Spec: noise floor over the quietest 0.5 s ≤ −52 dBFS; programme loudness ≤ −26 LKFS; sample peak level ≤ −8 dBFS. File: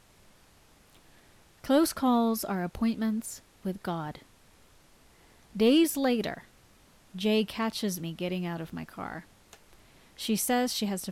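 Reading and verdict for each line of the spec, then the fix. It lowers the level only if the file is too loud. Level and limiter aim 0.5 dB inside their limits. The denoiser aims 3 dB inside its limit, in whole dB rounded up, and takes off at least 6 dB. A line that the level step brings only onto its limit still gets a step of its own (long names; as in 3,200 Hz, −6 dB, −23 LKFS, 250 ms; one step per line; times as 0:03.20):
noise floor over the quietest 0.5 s −60 dBFS: in spec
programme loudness −29.0 LKFS: in spec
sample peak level −13.5 dBFS: in spec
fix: no processing needed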